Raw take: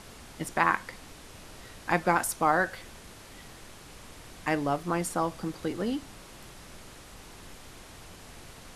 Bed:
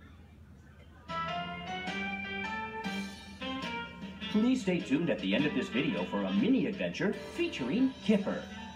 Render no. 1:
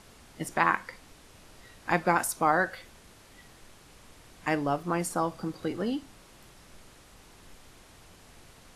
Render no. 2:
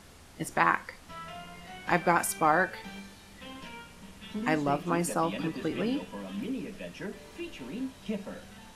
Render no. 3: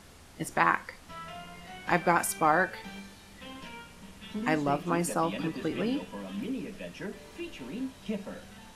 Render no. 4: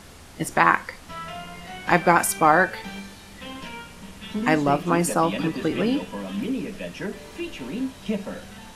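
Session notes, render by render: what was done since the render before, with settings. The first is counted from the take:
noise print and reduce 6 dB
add bed -7.5 dB
nothing audible
gain +7.5 dB; limiter -1 dBFS, peak gain reduction 1.5 dB

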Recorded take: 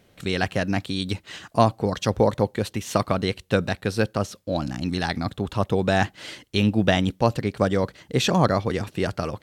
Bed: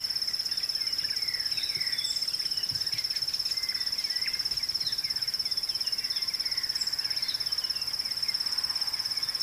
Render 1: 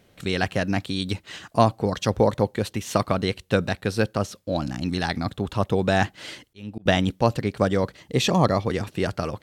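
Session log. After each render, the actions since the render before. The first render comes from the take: 6.42–6.86 auto swell 0.768 s; 7.97–8.63 notch 1500 Hz, Q 5.4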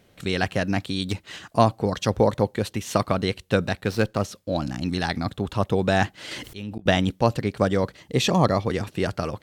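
1.03–1.48 self-modulated delay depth 0.09 ms; 3.84–4.25 running maximum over 3 samples; 6.31–6.8 fast leveller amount 70%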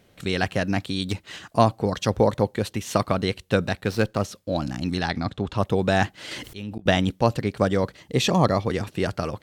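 4.99–5.58 LPF 6300 Hz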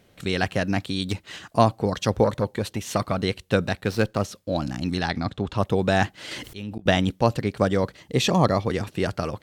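2.24–3.18 core saturation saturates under 560 Hz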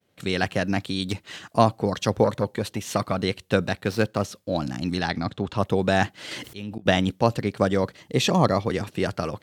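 HPF 90 Hz; expander -51 dBFS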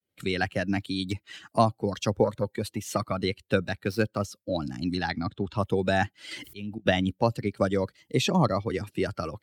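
per-bin expansion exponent 1.5; three-band squash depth 40%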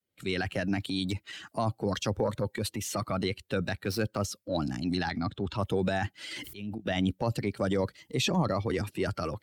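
transient shaper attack -5 dB, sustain +5 dB; limiter -18.5 dBFS, peak gain reduction 8.5 dB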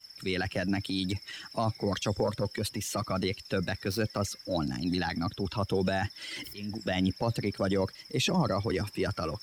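add bed -18.5 dB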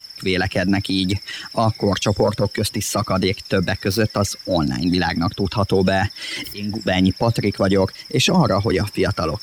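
gain +11.5 dB

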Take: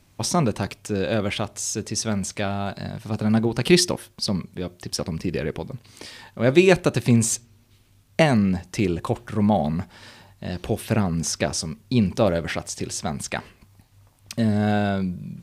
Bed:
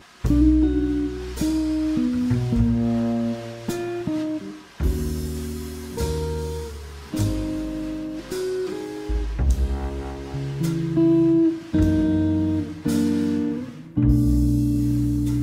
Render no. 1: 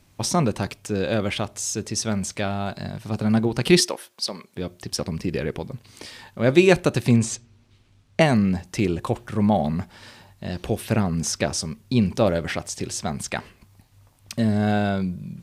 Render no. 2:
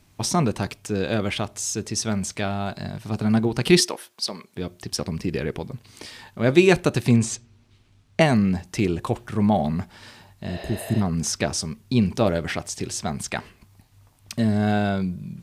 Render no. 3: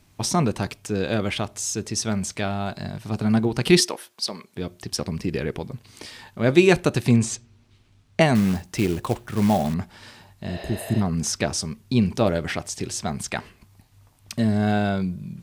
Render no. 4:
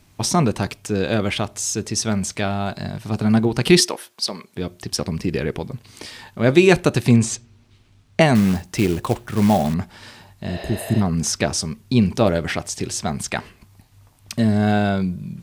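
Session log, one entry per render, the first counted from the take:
3.8–4.57 HPF 450 Hz; 7.17–8.21 air absorption 70 m
10.51–10.99 spectral repair 430–6200 Hz before; notch 540 Hz, Q 12
8.35–9.74 short-mantissa float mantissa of 2-bit
gain +3.5 dB; limiter -2 dBFS, peak gain reduction 2 dB

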